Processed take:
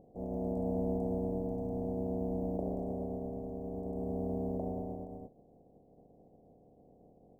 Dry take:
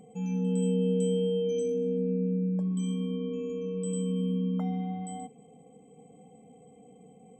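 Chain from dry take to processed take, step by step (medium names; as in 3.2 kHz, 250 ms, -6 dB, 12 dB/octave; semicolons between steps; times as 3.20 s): spectral contrast reduction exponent 0.13; elliptic low-pass 690 Hz, stop band 50 dB; trim +3 dB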